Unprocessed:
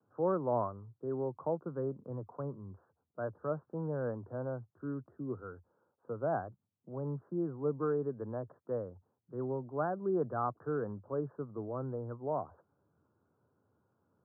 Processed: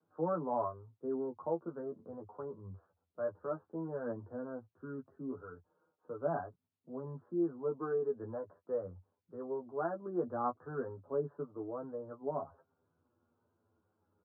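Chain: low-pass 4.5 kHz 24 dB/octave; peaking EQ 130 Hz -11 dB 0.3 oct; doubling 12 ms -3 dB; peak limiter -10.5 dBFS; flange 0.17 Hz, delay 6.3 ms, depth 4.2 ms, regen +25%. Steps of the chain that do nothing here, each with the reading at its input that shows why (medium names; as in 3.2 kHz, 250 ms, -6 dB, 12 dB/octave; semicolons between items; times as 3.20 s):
low-pass 4.5 kHz: input has nothing above 1.6 kHz; peak limiter -10.5 dBFS: peak at its input -18.5 dBFS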